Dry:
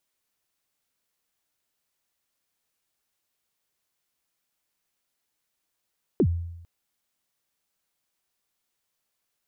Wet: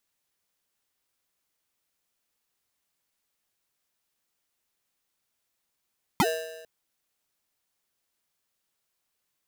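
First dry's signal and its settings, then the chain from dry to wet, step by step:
synth kick length 0.45 s, from 450 Hz, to 85 Hz, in 66 ms, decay 0.89 s, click off, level −15 dB
dynamic equaliser 130 Hz, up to −5 dB, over −37 dBFS, Q 0.88
ring modulator with a square carrier 560 Hz

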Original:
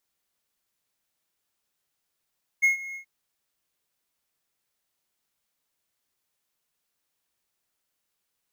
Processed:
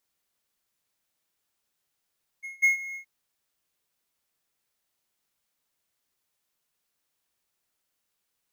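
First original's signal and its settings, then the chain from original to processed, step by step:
note with an ADSR envelope triangle 2,160 Hz, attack 22 ms, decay 124 ms, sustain −18.5 dB, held 0.33 s, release 98 ms −13.5 dBFS
echo ahead of the sound 194 ms −18 dB

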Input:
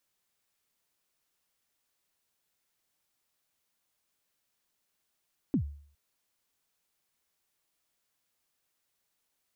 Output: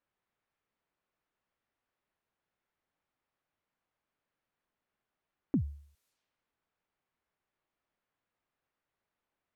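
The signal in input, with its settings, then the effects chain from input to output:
synth kick length 0.41 s, from 320 Hz, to 72 Hz, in 90 ms, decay 0.53 s, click off, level −21 dB
low-pass that shuts in the quiet parts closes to 1,700 Hz, open at −50.5 dBFS

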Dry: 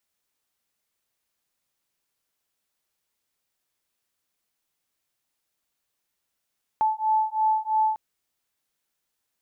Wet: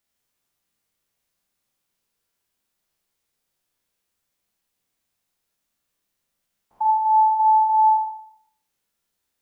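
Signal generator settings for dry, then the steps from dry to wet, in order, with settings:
two tones that beat 869 Hz, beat 3 Hz, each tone −23.5 dBFS 1.15 s
spectrum averaged block by block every 100 ms
low-shelf EQ 300 Hz +6 dB
four-comb reverb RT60 0.68 s, combs from 32 ms, DRR 0 dB

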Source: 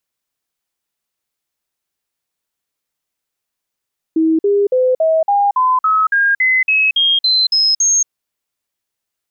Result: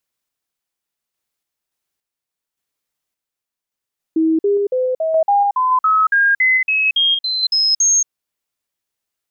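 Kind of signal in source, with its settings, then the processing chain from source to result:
stepped sweep 321 Hz up, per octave 3, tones 14, 0.23 s, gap 0.05 s −10 dBFS
sample-and-hold tremolo

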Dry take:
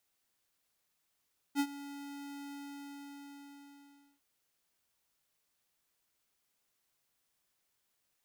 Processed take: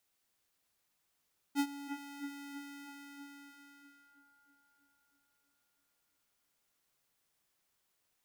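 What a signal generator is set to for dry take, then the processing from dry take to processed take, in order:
note with an ADSR envelope square 283 Hz, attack 48 ms, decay 63 ms, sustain −17 dB, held 0.96 s, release 1,690 ms −28.5 dBFS
delay with a low-pass on its return 323 ms, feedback 60%, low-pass 1,900 Hz, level −6 dB

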